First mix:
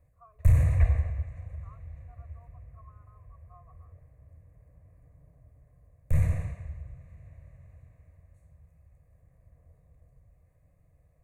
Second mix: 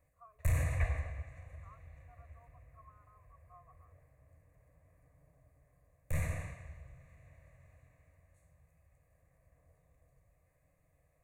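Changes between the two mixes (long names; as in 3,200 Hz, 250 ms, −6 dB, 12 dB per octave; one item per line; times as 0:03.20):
background: send +9.5 dB
master: add low-shelf EQ 470 Hz −10 dB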